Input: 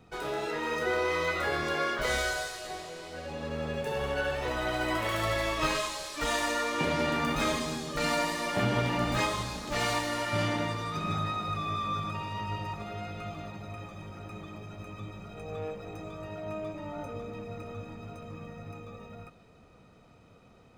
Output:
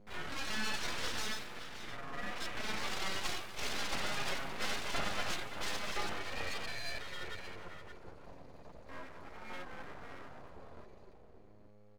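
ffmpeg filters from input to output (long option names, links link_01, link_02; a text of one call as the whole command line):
ffmpeg -i in.wav -filter_complex "[0:a]afwtdn=0.0224,highpass=frequency=90:width=0.5412,highpass=frequency=90:width=1.3066,aeval=exprs='val(0)+0.00282*(sin(2*PI*60*n/s)+sin(2*PI*2*60*n/s)/2+sin(2*PI*3*60*n/s)/3+sin(2*PI*4*60*n/s)/4+sin(2*PI*5*60*n/s)/5)':channel_layout=same,flanger=delay=4.8:depth=3.5:regen=-24:speed=0.34:shape=sinusoidal,asplit=2[link_01][link_02];[link_02]adelay=991.3,volume=-8dB,highshelf=frequency=4000:gain=-22.3[link_03];[link_01][link_03]amix=inputs=2:normalize=0,aeval=exprs='abs(val(0))':channel_layout=same,asetrate=76440,aresample=44100,volume=-1dB" out.wav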